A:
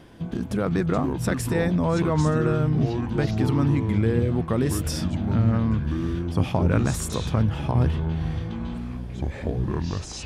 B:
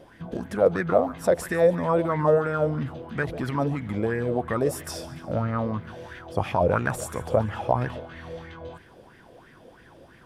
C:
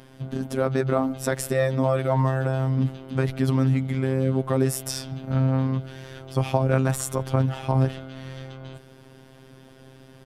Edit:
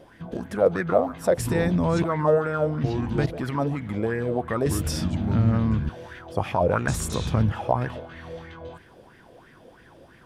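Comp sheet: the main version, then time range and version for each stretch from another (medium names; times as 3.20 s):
B
1.38–2.04 s: from A
2.84–3.26 s: from A
4.66–5.89 s: from A
6.88–7.52 s: from A
not used: C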